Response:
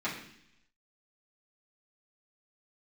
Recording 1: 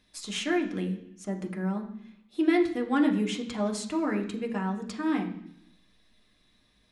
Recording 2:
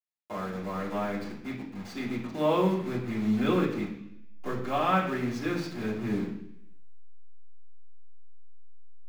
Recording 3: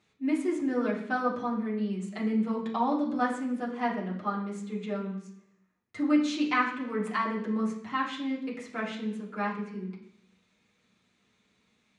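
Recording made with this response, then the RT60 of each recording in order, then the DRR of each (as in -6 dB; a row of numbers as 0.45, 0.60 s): 2; 0.70, 0.70, 0.70 s; 1.5, -10.0, -5.5 dB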